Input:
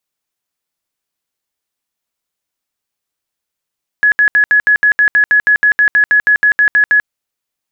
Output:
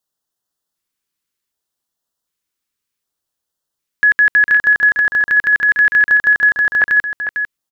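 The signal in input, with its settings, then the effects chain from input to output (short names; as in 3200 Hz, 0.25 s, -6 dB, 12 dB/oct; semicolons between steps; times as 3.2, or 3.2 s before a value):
tone bursts 1690 Hz, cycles 151, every 0.16 s, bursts 19, -6 dBFS
LFO notch square 0.66 Hz 700–2300 Hz; echo 0.45 s -8.5 dB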